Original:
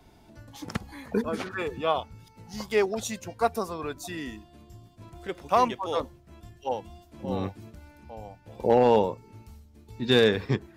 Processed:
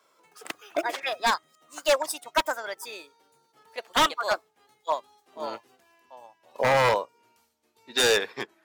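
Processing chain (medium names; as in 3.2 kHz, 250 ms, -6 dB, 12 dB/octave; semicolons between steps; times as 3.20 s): gliding tape speed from 152% -> 97%; high-pass 630 Hz 12 dB/octave; wavefolder -21 dBFS; upward expansion 1.5:1, over -49 dBFS; trim +7.5 dB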